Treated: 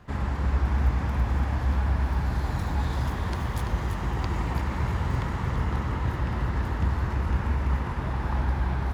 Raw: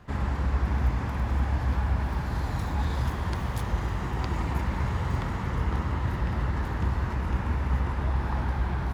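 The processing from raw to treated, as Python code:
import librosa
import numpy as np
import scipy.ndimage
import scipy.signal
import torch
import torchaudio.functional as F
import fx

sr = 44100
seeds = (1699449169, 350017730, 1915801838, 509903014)

y = x + 10.0 ** (-7.0 / 20.0) * np.pad(x, (int(336 * sr / 1000.0), 0))[:len(x)]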